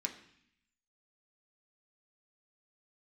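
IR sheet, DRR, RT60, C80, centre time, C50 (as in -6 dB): 2.0 dB, 0.65 s, 13.5 dB, 13 ms, 11.0 dB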